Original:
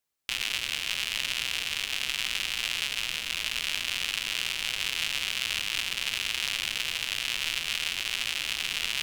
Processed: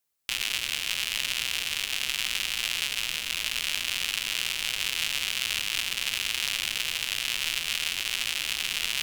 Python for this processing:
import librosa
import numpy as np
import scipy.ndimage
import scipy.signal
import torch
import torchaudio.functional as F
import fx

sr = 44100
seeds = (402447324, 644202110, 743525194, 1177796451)

y = fx.high_shelf(x, sr, hz=7200.0, db=6.5)